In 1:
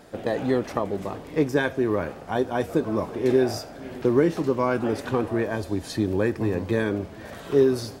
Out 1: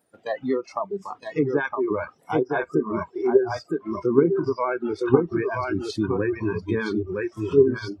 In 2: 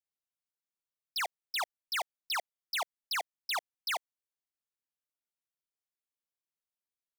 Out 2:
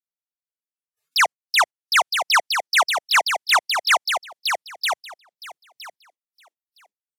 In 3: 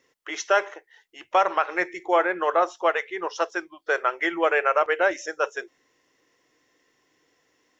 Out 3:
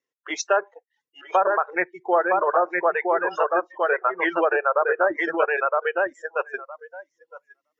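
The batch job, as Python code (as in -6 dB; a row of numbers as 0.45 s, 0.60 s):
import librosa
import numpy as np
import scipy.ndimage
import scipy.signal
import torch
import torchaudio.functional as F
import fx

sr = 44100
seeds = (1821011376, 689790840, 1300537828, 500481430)

p1 = scipy.signal.sosfilt(scipy.signal.butter(2, 99.0, 'highpass', fs=sr, output='sos'), x)
p2 = p1 + fx.echo_feedback(p1, sr, ms=964, feedback_pct=15, wet_db=-3, dry=0)
p3 = fx.dereverb_blind(p2, sr, rt60_s=0.53)
p4 = fx.env_lowpass_down(p3, sr, base_hz=1400.0, full_db=-16.5)
p5 = fx.level_steps(p4, sr, step_db=16)
p6 = p4 + (p5 * 10.0 ** (0.0 / 20.0))
p7 = fx.vibrato(p6, sr, rate_hz=14.0, depth_cents=32.0)
p8 = fx.noise_reduce_blind(p7, sr, reduce_db=22)
y = p8 * 10.0 ** (-24 / 20.0) / np.sqrt(np.mean(np.square(p8)))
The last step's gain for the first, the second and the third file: -1.5 dB, +12.0 dB, -0.5 dB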